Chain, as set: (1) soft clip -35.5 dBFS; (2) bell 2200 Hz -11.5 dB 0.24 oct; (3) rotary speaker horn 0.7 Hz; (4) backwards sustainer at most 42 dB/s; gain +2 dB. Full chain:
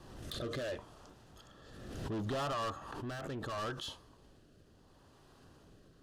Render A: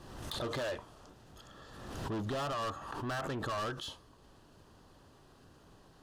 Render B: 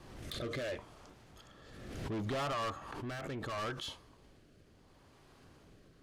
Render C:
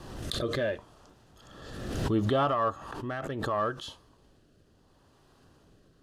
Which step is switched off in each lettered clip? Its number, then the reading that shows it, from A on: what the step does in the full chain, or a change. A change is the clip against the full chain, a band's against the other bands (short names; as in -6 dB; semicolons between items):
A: 3, 2 kHz band +1.5 dB; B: 2, 2 kHz band +2.0 dB; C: 1, distortion -6 dB